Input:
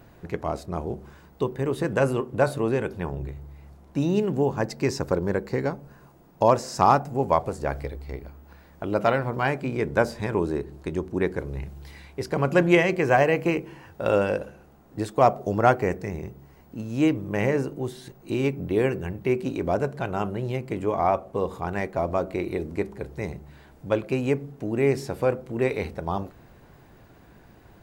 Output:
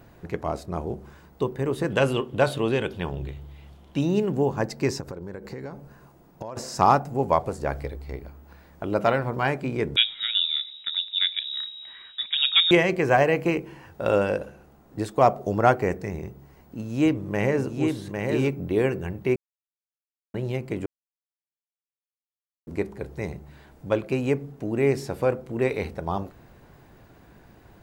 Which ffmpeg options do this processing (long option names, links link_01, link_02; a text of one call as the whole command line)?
ffmpeg -i in.wav -filter_complex "[0:a]asettb=1/sr,asplit=3[link_01][link_02][link_03];[link_01]atrim=end=1.904[link_04];[link_02]atrim=start=1.9:end=4.01,asetpts=PTS-STARTPTS,afade=type=in:duration=0.004:curve=qsin,afade=type=out:start_time=2.106:duration=0.004:curve=qsin,equalizer=frequency=3200:width=2.3:gain=15[link_05];[link_03]atrim=start=4.006[link_06];[link_04][link_05]acrossfade=duration=0.004:curve1=hsin:curve2=qsin[link_07];[link_07][link_06]acrossfade=duration=0.004:curve1=qsin:curve2=hsin,asettb=1/sr,asplit=3[link_08][link_09][link_10];[link_08]atrim=end=5.004[link_11];[link_09]atrim=start=5:end=6.57,asetpts=PTS-STARTPTS,afade=type=in:duration=0.004:curve=qsin,afade=type=out:start_time=1.566:duration=0.004:curve=qsin,acompressor=threshold=-31dB:ratio=16:attack=3.2:release=140:knee=1:detection=peak[link_12];[link_10]atrim=start=6.566[link_13];[link_11][link_12]acrossfade=duration=0.004:curve1=hsin:curve2=qsin[link_14];[link_14][link_13]acrossfade=duration=0.004:curve1=qsin:curve2=hsin,asettb=1/sr,asplit=3[link_15][link_16][link_17];[link_15]atrim=end=9.964[link_18];[link_16]atrim=start=9.96:end=12.71,asetpts=PTS-STARTPTS,afade=type=in:duration=0.004:curve=qsin,afade=type=out:start_time=2.746:duration=0.004:curve=qsin,lowpass=frequency=3300:width_type=q:width=0.5098,lowpass=frequency=3300:width_type=q:width=0.6013,lowpass=frequency=3300:width_type=q:width=0.9,lowpass=frequency=3300:width_type=q:width=2.563,afreqshift=-3900[link_19];[link_17]atrim=start=12.706[link_20];[link_18][link_19]acrossfade=duration=0.004:curve1=hsin:curve2=qsin[link_21];[link_21][link_20]acrossfade=duration=0.004:curve1=qsin:curve2=hsin,asettb=1/sr,asplit=3[link_22][link_23][link_24];[link_22]atrim=end=16.254[link_25];[link_23]atrim=start=16.25:end=18.56,asetpts=PTS-STARTPTS,afade=type=in:duration=0.004:curve=qsin,afade=type=out:start_time=2.306:duration=0.004:curve=qsin,aecho=1:1:803:0.596,atrim=end_sample=101871[link_26];[link_24]atrim=start=18.556[link_27];[link_25][link_26]acrossfade=duration=0.004:curve1=hsin:curve2=qsin[link_28];[link_28][link_27]acrossfade=duration=0.004:curve1=qsin:curve2=hsin,asplit=5[link_29][link_30][link_31][link_32][link_33];[link_29]atrim=end=19.36,asetpts=PTS-STARTPTS,afade=type=out:start_time=19.356:duration=0.004:curve=hsin[link_34];[link_30]atrim=start=19.36:end=20.34,asetpts=PTS-STARTPTS,volume=0[link_35];[link_31]atrim=start=20.34:end=20.86,asetpts=PTS-STARTPTS,afade=type=in:duration=0.004:curve=hsin,afade=type=out:start_time=0.516:duration=0.004:curve=hsin[link_36];[link_32]atrim=start=20.86:end=22.67,asetpts=PTS-STARTPTS,volume=0[link_37];[link_33]atrim=start=22.67,asetpts=PTS-STARTPTS,afade=type=in:duration=0.004:curve=hsin[link_38];[link_34][link_35][link_36][link_37][link_38]concat=n=5:v=0:a=1" out.wav